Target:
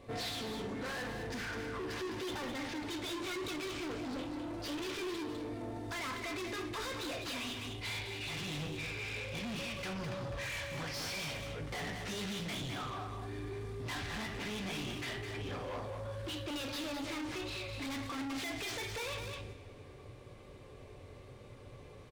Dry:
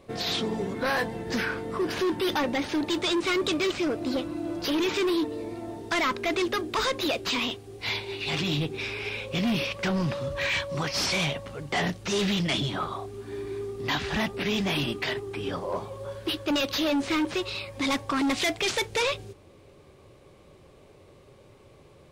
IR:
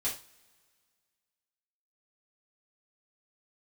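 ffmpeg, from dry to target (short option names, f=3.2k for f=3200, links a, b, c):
-filter_complex "[0:a]asplit=2[a][b];[b]equalizer=f=1.8k:w=1.5:g=5[c];[1:a]atrim=start_sample=2205,lowshelf=f=130:g=9[d];[c][d]afir=irnorm=-1:irlink=0,volume=-5dB[e];[a][e]amix=inputs=2:normalize=0,asoftclip=type=hard:threshold=-28dB,highshelf=f=9.6k:g=-3.5,aecho=1:1:206:0.447,alimiter=level_in=6dB:limit=-24dB:level=0:latency=1:release=20,volume=-6dB,volume=-5.5dB"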